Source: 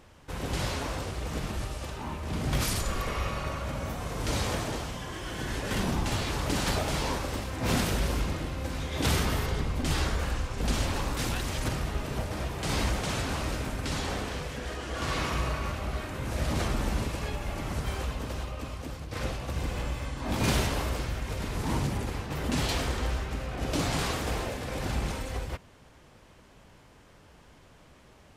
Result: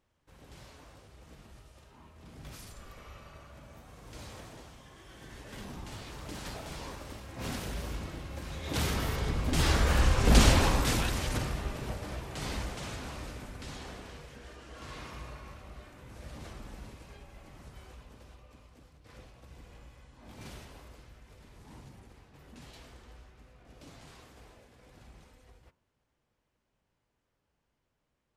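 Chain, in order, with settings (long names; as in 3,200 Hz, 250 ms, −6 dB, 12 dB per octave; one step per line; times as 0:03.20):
source passing by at 0:10.30, 11 m/s, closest 3.8 metres
hum removal 90.04 Hz, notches 17
level +8.5 dB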